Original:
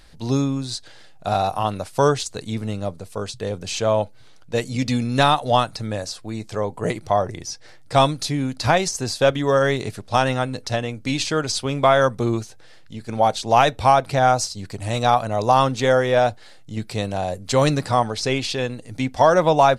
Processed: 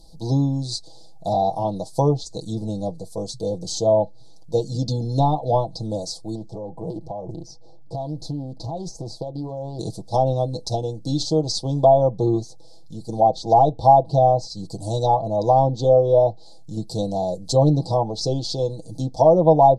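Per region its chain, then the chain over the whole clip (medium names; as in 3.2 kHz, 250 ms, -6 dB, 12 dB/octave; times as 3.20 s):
6.35–9.79 s: low-pass 1.1 kHz 6 dB/octave + compression 10:1, threshold -26 dBFS + loudspeaker Doppler distortion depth 0.4 ms
whole clip: low-pass that closes with the level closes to 1.8 kHz, closed at -13.5 dBFS; elliptic band-stop 820–4200 Hz, stop band 50 dB; comb 6.1 ms, depth 75%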